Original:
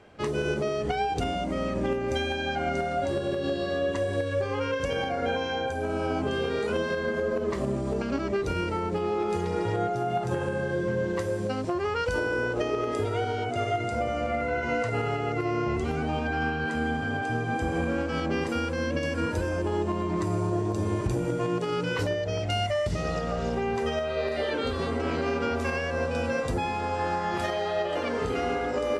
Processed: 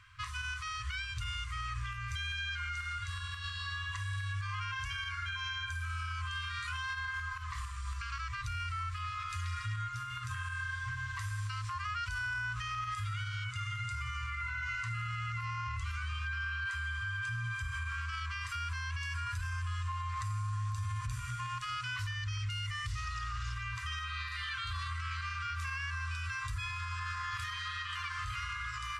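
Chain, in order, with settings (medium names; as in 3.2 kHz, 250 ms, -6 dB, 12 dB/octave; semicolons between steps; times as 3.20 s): FFT band-reject 120–1000 Hz; peak limiter -29.5 dBFS, peak gain reduction 11 dB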